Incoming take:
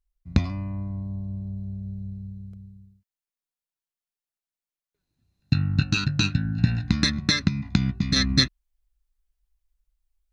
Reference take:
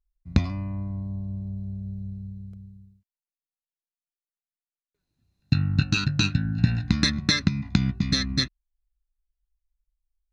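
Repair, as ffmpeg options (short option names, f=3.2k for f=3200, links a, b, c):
-af "asetnsamples=n=441:p=0,asendcmd='8.16 volume volume -5dB',volume=0dB"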